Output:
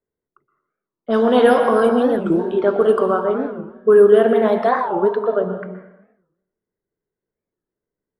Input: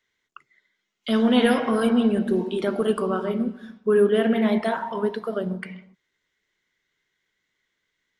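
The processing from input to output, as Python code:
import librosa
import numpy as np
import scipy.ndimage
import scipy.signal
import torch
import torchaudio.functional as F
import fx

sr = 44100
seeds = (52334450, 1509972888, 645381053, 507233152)

y = fx.dynamic_eq(x, sr, hz=2000.0, q=1.6, threshold_db=-44.0, ratio=4.0, max_db=-7)
y = fx.env_lowpass(y, sr, base_hz=330.0, full_db=-17.0)
y = fx.band_shelf(y, sr, hz=840.0, db=9.5, octaves=2.5)
y = fx.rev_plate(y, sr, seeds[0], rt60_s=0.87, hf_ratio=0.85, predelay_ms=110, drr_db=9.0)
y = fx.record_warp(y, sr, rpm=45.0, depth_cents=250.0)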